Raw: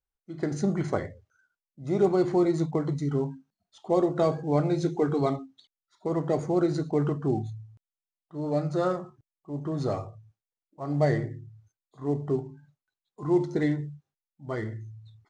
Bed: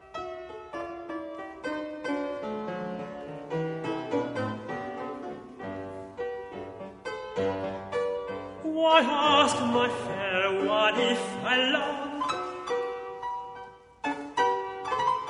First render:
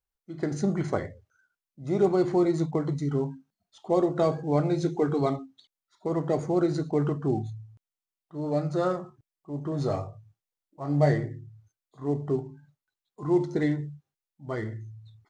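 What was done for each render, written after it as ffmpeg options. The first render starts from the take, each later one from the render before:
-filter_complex "[0:a]asettb=1/sr,asplit=3[a][b][c];[a]atrim=end=9.704[d];[b]atrim=start=9.7:end=11.13,asetpts=PTS-STARTPTS,afade=t=in:d=0.004:c=qsin,afade=t=out:st=1.426:d=0.004:c=qsin,asplit=2[e][f];[f]adelay=21,volume=-7dB[g];[e][g]amix=inputs=2:normalize=0,atrim=end_sample=63063[h];[c]atrim=start=11.126[i];[d][h]acrossfade=d=0.004:c1=hsin:c2=qsin[j];[j][i]acrossfade=d=0.004:c1=qsin:c2=hsin"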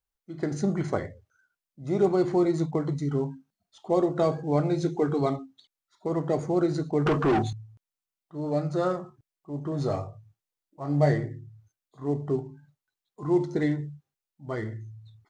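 -filter_complex "[0:a]asettb=1/sr,asplit=3[a][b][c];[a]atrim=end=7.064[d];[b]atrim=start=7.06:end=7.53,asetpts=PTS-STARTPTS,afade=t=in:d=0.004:c=qsin,afade=t=out:st=0.466:d=0.004:c=qsin,asplit=2[e][f];[f]highpass=f=720:p=1,volume=27dB,asoftclip=type=tanh:threshold=-15dB[g];[e][g]amix=inputs=2:normalize=0,lowpass=f=5.5k:p=1,volume=-6dB[h];[c]atrim=start=7.526[i];[d][h]acrossfade=d=0.004:c1=hsin:c2=qsin[j];[j][i]acrossfade=d=0.004:c1=qsin:c2=hsin"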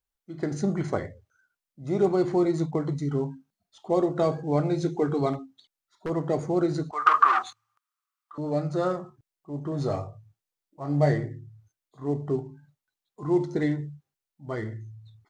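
-filter_complex "[0:a]asettb=1/sr,asplit=3[a][b][c];[a]atrim=end=5.334[d];[b]atrim=start=5.33:end=6.1,asetpts=PTS-STARTPTS,afade=t=in:d=0.004:c=qsin,afade=t=out:st=0.766:d=0.004:c=qsin,aeval=exprs='0.0596*(abs(mod(val(0)/0.0596+3,4)-2)-1)':c=same[e];[c]atrim=start=6.096[f];[d][e]acrossfade=d=0.004:c1=hsin:c2=qsin[g];[g][f]acrossfade=d=0.004:c1=qsin:c2=hsin,asettb=1/sr,asplit=3[h][i][j];[h]atrim=end=6.914[k];[i]atrim=start=6.91:end=8.38,asetpts=PTS-STARTPTS,afade=t=in:d=0.004:c=qsin,afade=t=out:st=1.466:d=0.004:c=qsin,highpass=f=1.2k:t=q:w=9[l];[j]atrim=start=8.376[m];[k][l]acrossfade=d=0.004:c1=hsin:c2=qsin[n];[n][m]acrossfade=d=0.004:c1=qsin:c2=hsin"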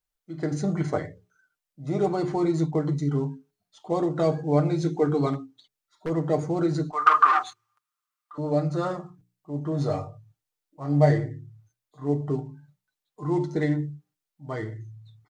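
-af "bandreject=f=60:t=h:w=6,bandreject=f=120:t=h:w=6,bandreject=f=180:t=h:w=6,bandreject=f=240:t=h:w=6,bandreject=f=300:t=h:w=6,bandreject=f=360:t=h:w=6,bandreject=f=420:t=h:w=6,aecho=1:1:6.6:0.53"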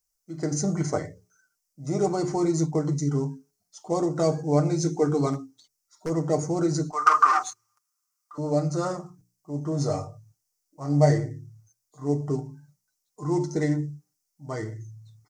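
-af "highshelf=f=4.5k:t=q:w=3:g=8,bandreject=f=1.7k:w=17"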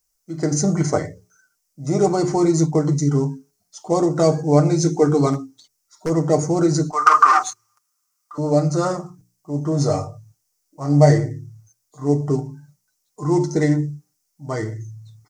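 -af "volume=7dB,alimiter=limit=-1dB:level=0:latency=1"

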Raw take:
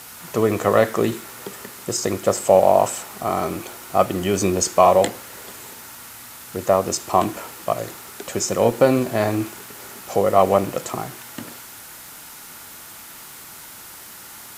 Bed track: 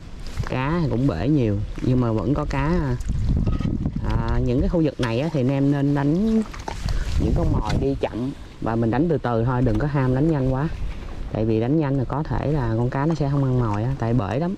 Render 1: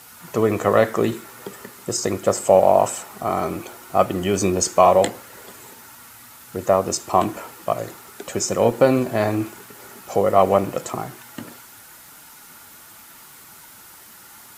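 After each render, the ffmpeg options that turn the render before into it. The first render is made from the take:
-af "afftdn=nr=6:nf=-40"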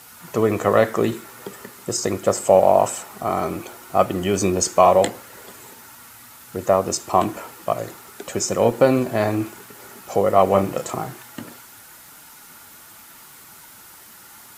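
-filter_complex "[0:a]asettb=1/sr,asplit=3[a][b][c];[a]atrim=end=10.514[d];[b]atrim=start=10.51:end=11.26,asetpts=PTS-STARTPTS,afade=t=in:d=0.004:c=qsin,afade=t=out:st=0.746:d=0.004:c=qsin,asplit=2[e][f];[f]adelay=31,volume=-7dB[g];[e][g]amix=inputs=2:normalize=0,atrim=end_sample=33075[h];[c]atrim=start=11.256[i];[d][h]acrossfade=d=0.004:c1=hsin:c2=qsin[j];[j][i]acrossfade=d=0.004:c1=qsin:c2=hsin"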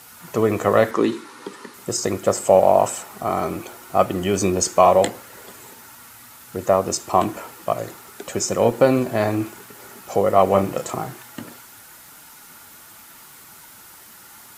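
-filter_complex "[0:a]asettb=1/sr,asplit=3[a][b][c];[a]atrim=end=0.914[d];[b]atrim=start=0.91:end=1.74,asetpts=PTS-STARTPTS,afade=t=in:d=0.004:c=qsin,afade=t=out:st=0.826:d=0.004:c=qsin,highpass=200,equalizer=f=290:t=q:w=4:g=9,equalizer=f=660:t=q:w=4:g=-10,equalizer=f=1k:t=q:w=4:g=6,equalizer=f=4.1k:t=q:w=4:g=4,equalizer=f=7.6k:t=q:w=4:g=-6,lowpass=f=9.8k:w=0.5412,lowpass=f=9.8k:w=1.3066[e];[c]atrim=start=1.736[f];[d][e]acrossfade=d=0.004:c1=hsin:c2=qsin[g];[g][f]acrossfade=d=0.004:c1=qsin:c2=hsin"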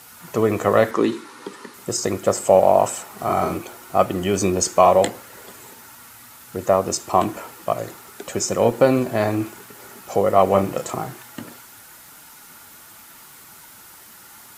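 -filter_complex "[0:a]asettb=1/sr,asplit=3[a][b][c];[a]atrim=end=3.144[d];[b]atrim=start=3.14:end=3.58,asetpts=PTS-STARTPTS,afade=t=in:d=0.004:c=qsin,afade=t=out:st=0.436:d=0.004:c=qsin,asplit=2[e][f];[f]adelay=44,volume=-3dB[g];[e][g]amix=inputs=2:normalize=0,atrim=end_sample=19404[h];[c]atrim=start=3.576[i];[d][h]acrossfade=d=0.004:c1=hsin:c2=qsin[j];[j][i]acrossfade=d=0.004:c1=qsin:c2=hsin"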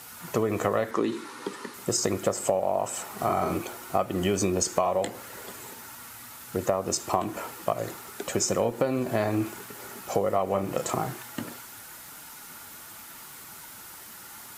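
-af "acompressor=threshold=-21dB:ratio=12"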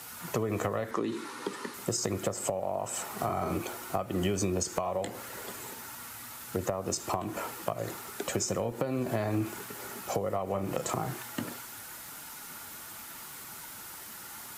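-filter_complex "[0:a]acrossover=split=150[a][b];[b]acompressor=threshold=-28dB:ratio=6[c];[a][c]amix=inputs=2:normalize=0"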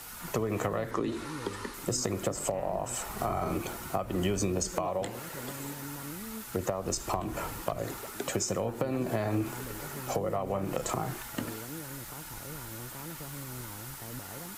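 -filter_complex "[1:a]volume=-23dB[a];[0:a][a]amix=inputs=2:normalize=0"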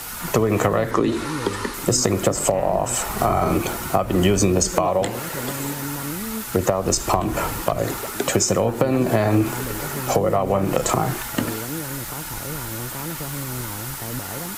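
-af "volume=12dB,alimiter=limit=-2dB:level=0:latency=1"

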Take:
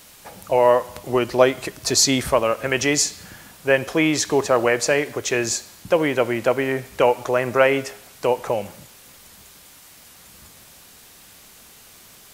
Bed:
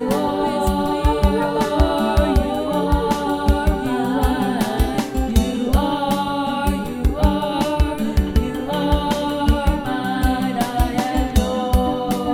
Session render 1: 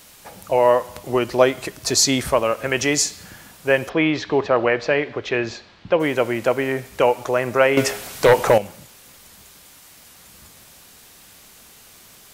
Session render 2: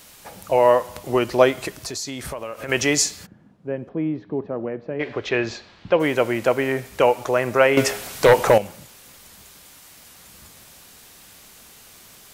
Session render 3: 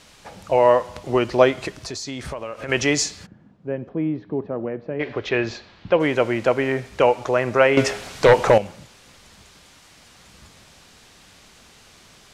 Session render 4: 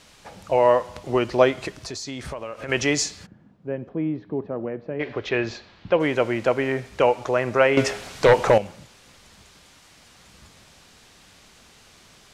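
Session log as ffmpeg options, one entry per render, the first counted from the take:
-filter_complex "[0:a]asplit=3[a][b][c];[a]afade=t=out:st=3.88:d=0.02[d];[b]lowpass=f=3.9k:w=0.5412,lowpass=f=3.9k:w=1.3066,afade=t=in:st=3.88:d=0.02,afade=t=out:st=5.99:d=0.02[e];[c]afade=t=in:st=5.99:d=0.02[f];[d][e][f]amix=inputs=3:normalize=0,asettb=1/sr,asplit=3[g][h][i];[g]atrim=end=7.774[j];[h]atrim=start=7.77:end=8.58,asetpts=PTS-STARTPTS,afade=t=in:d=0.004:c=qsin,afade=t=out:st=0.806:d=0.004:c=qsin,aeval=exprs='0.473*sin(PI/2*2.24*val(0)/0.473)':c=same[k];[i]atrim=start=8.576[l];[j][k]acrossfade=d=0.004:c1=hsin:c2=qsin[m];[m][l]acrossfade=d=0.004:c1=qsin:c2=hsin"
-filter_complex "[0:a]asplit=3[a][b][c];[a]afade=t=out:st=1.73:d=0.02[d];[b]acompressor=threshold=-28dB:ratio=5:attack=3.2:release=140:knee=1:detection=peak,afade=t=in:st=1.73:d=0.02,afade=t=out:st=2.68:d=0.02[e];[c]afade=t=in:st=2.68:d=0.02[f];[d][e][f]amix=inputs=3:normalize=0,asplit=3[g][h][i];[g]afade=t=out:st=3.25:d=0.02[j];[h]bandpass=f=200:t=q:w=1.4,afade=t=in:st=3.25:d=0.02,afade=t=out:st=4.99:d=0.02[k];[i]afade=t=in:st=4.99:d=0.02[l];[j][k][l]amix=inputs=3:normalize=0"
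-af "lowpass=6.2k,lowshelf=f=150:g=3"
-af "volume=-2dB"

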